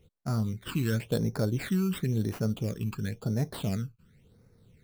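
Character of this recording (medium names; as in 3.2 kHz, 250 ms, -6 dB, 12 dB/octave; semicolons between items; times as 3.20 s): aliases and images of a low sample rate 5.9 kHz, jitter 0%; phasing stages 12, 0.95 Hz, lowest notch 600–3100 Hz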